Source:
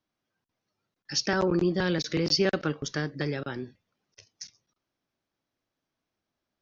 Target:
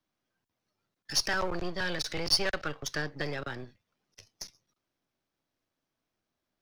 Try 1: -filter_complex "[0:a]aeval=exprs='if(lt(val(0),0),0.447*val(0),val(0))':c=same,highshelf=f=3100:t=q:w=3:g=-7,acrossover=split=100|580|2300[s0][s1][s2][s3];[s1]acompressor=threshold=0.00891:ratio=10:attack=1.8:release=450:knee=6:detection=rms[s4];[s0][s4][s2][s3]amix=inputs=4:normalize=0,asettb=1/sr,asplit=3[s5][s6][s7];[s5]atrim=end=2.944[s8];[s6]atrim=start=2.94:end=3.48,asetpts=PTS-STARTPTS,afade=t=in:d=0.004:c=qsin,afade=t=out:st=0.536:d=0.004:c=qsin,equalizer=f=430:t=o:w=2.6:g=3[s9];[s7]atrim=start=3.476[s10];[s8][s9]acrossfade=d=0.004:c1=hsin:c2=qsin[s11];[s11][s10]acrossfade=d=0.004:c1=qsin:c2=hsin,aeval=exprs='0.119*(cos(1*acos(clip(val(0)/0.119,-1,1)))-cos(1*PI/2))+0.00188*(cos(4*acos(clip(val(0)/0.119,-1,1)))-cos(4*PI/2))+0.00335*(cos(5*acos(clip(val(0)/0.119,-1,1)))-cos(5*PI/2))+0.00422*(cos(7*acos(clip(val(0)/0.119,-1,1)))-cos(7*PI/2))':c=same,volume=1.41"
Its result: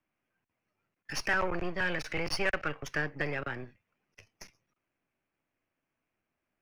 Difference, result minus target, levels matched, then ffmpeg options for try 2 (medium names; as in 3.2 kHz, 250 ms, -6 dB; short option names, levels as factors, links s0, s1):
4 kHz band -8.0 dB
-filter_complex "[0:a]aeval=exprs='if(lt(val(0),0),0.447*val(0),val(0))':c=same,acrossover=split=100|580|2300[s0][s1][s2][s3];[s1]acompressor=threshold=0.00891:ratio=10:attack=1.8:release=450:knee=6:detection=rms[s4];[s0][s4][s2][s3]amix=inputs=4:normalize=0,asettb=1/sr,asplit=3[s5][s6][s7];[s5]atrim=end=2.944[s8];[s6]atrim=start=2.94:end=3.48,asetpts=PTS-STARTPTS,afade=t=in:d=0.004:c=qsin,afade=t=out:st=0.536:d=0.004:c=qsin,equalizer=f=430:t=o:w=2.6:g=3[s9];[s7]atrim=start=3.476[s10];[s8][s9]acrossfade=d=0.004:c1=hsin:c2=qsin[s11];[s11][s10]acrossfade=d=0.004:c1=qsin:c2=hsin,aeval=exprs='0.119*(cos(1*acos(clip(val(0)/0.119,-1,1)))-cos(1*PI/2))+0.00188*(cos(4*acos(clip(val(0)/0.119,-1,1)))-cos(4*PI/2))+0.00335*(cos(5*acos(clip(val(0)/0.119,-1,1)))-cos(5*PI/2))+0.00422*(cos(7*acos(clip(val(0)/0.119,-1,1)))-cos(7*PI/2))':c=same,volume=1.41"